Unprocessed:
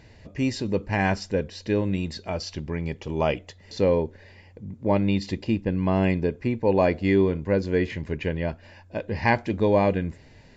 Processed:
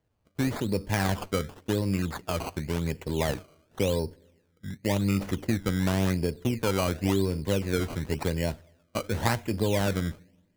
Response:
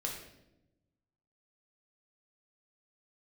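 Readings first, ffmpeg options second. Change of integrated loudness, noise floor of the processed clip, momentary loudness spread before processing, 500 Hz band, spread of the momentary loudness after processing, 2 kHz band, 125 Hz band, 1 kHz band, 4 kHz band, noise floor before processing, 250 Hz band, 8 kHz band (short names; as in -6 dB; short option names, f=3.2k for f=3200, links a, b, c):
-3.5 dB, -69 dBFS, 11 LU, -6.0 dB, 9 LU, -4.0 dB, -1.0 dB, -5.0 dB, +1.5 dB, -52 dBFS, -3.5 dB, n/a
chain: -filter_complex "[0:a]acrossover=split=150|3000[a][b][c];[b]acompressor=threshold=-26dB:ratio=4[d];[a][d][c]amix=inputs=3:normalize=0,agate=range=-25dB:threshold=-37dB:ratio=16:detection=peak,asplit=2[e][f];[f]lowshelf=f=330:g=-6[g];[1:a]atrim=start_sample=2205[h];[g][h]afir=irnorm=-1:irlink=0,volume=-20.5dB[i];[e][i]amix=inputs=2:normalize=0,acrusher=samples=17:mix=1:aa=0.000001:lfo=1:lforange=17:lforate=0.92"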